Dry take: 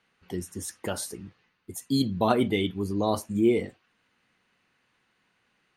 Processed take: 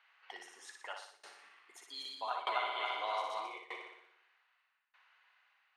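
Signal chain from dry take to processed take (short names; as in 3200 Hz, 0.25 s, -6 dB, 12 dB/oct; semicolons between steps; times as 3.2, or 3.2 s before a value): 1.22–3.58 regenerating reverse delay 0.136 s, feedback 69%, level 0 dB; LPF 3100 Hz 12 dB/oct; flutter echo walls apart 10.2 m, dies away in 0.85 s; tremolo saw down 0.81 Hz, depth 95%; compressor 6:1, threshold -28 dBFS, peak gain reduction 13.5 dB; HPF 810 Hz 24 dB/oct; gain +4 dB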